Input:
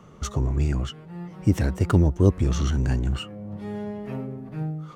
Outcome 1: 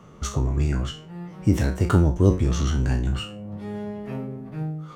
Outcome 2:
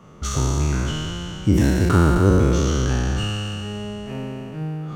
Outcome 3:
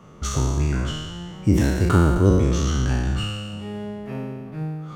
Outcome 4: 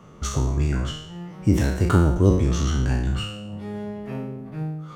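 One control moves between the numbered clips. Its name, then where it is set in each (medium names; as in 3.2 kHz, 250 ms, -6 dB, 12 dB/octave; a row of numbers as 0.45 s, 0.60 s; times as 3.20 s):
spectral sustain, RT60: 0.33 s, 3.17 s, 1.52 s, 0.73 s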